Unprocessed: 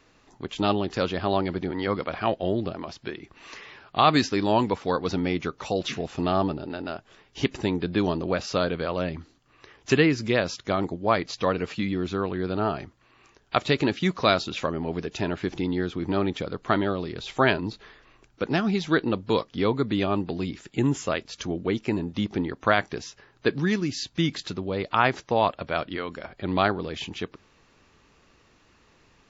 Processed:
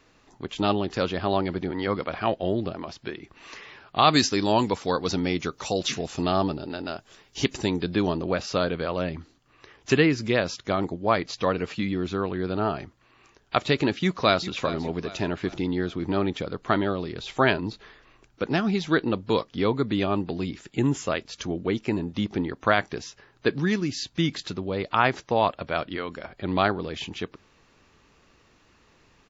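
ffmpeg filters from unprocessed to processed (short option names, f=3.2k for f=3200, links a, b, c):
-filter_complex "[0:a]asettb=1/sr,asplit=3[a][b][c];[a]atrim=end=4.024[d];[b]atrim=start=4.02:end=7.96,asetpts=PTS-STARTPTS,afade=t=in:d=0.004:c=qsin,afade=t=out:st=3.936:d=0.004:c=qsin,bass=f=250:g=0,treble=f=4k:g=10[e];[c]atrim=start=7.956[f];[d][e]acrossfade=d=0.004:c1=hsin:c2=qsin[g];[g][f]acrossfade=d=0.004:c1=qsin:c2=hsin,asplit=2[h][i];[i]afade=t=in:st=13.97:d=0.01,afade=t=out:st=14.51:d=0.01,aecho=0:1:400|800|1200|1600:0.199526|0.0897868|0.0404041|0.0181818[j];[h][j]amix=inputs=2:normalize=0"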